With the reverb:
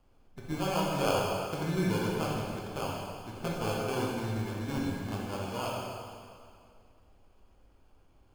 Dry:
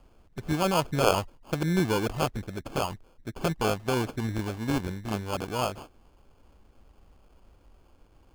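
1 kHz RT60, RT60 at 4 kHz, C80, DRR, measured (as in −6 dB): 2.2 s, 2.0 s, 0.5 dB, −4.0 dB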